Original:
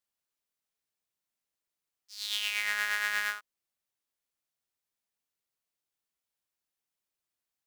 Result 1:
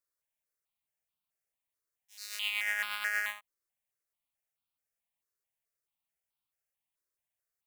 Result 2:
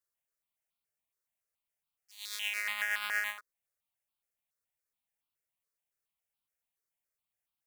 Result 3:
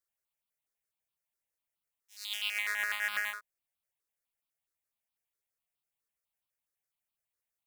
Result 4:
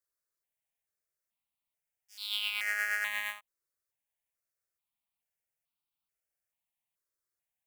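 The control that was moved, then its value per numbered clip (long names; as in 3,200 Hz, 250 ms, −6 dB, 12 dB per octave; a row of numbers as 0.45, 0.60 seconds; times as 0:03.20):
step-sequenced phaser, speed: 4.6, 7.1, 12, 2.3 Hertz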